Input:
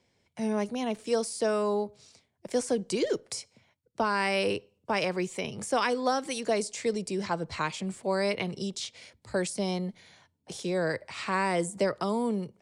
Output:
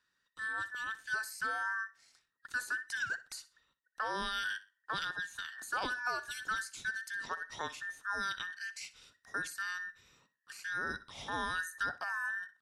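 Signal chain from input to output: band inversion scrambler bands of 2000 Hz; on a send: feedback echo 62 ms, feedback 26%, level -17 dB; on the sum: gain -9 dB

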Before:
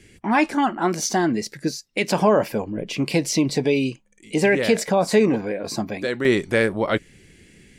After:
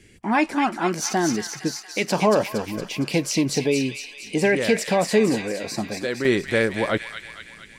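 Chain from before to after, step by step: thin delay 0.231 s, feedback 60%, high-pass 1900 Hz, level -4 dB; gain -1.5 dB

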